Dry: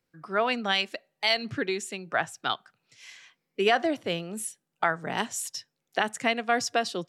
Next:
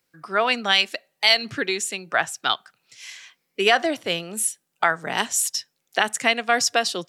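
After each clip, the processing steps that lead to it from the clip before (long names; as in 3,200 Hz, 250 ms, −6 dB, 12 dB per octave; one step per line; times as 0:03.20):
spectral tilt +2 dB per octave
level +5 dB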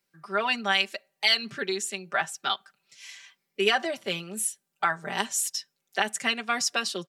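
comb filter 5.1 ms, depth 86%
level −7.5 dB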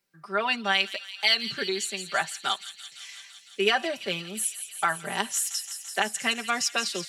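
delay with a high-pass on its return 169 ms, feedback 78%, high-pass 3,500 Hz, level −9 dB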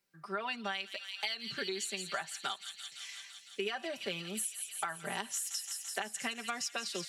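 downward compressor 12 to 1, threshold −30 dBFS, peak gain reduction 14 dB
level −3 dB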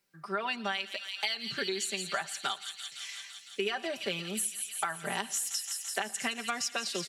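repeating echo 116 ms, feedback 44%, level −22.5 dB
level +4 dB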